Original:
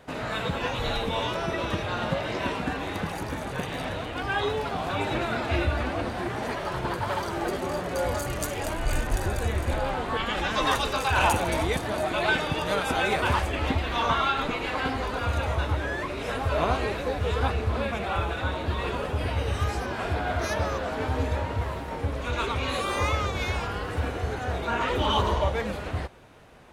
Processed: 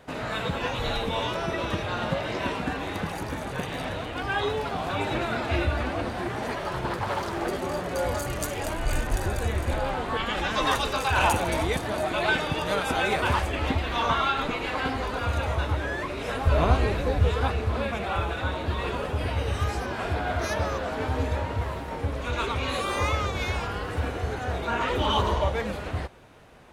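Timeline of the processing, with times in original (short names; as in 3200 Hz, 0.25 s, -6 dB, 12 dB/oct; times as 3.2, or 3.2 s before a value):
6.87–7.49 Doppler distortion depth 0.43 ms
16.47–17.29 low shelf 190 Hz +10 dB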